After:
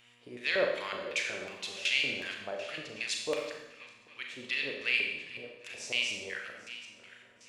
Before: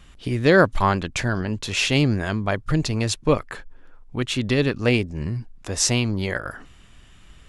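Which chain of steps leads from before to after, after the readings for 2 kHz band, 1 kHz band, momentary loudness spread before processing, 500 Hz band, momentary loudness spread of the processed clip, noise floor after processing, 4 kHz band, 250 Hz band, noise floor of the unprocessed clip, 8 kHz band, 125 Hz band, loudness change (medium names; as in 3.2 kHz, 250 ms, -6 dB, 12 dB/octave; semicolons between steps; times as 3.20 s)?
-6.0 dB, -18.0 dB, 13 LU, -13.0 dB, 16 LU, -60 dBFS, -6.0 dB, -24.5 dB, -49 dBFS, -15.0 dB, -33.5 dB, -10.5 dB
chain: backward echo that repeats 397 ms, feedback 55%, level -14 dB; LFO band-pass square 2.7 Hz 530–2400 Hz; mains buzz 120 Hz, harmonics 24, -60 dBFS -4 dB/octave; pre-emphasis filter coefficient 0.9; Schroeder reverb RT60 0.9 s, combs from 29 ms, DRR 1.5 dB; trim +7 dB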